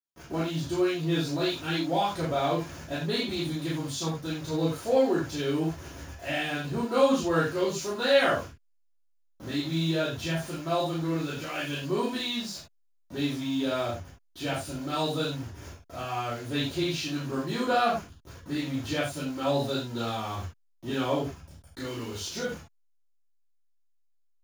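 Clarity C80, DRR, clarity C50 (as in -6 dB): 9.0 dB, -10.0 dB, 4.0 dB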